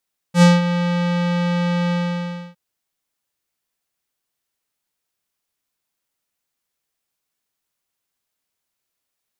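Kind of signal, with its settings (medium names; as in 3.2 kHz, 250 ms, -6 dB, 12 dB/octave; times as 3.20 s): synth note square F3 12 dB/octave, low-pass 3.7 kHz, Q 1, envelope 1.5 oct, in 0.25 s, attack 82 ms, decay 0.19 s, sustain -11 dB, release 0.64 s, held 1.57 s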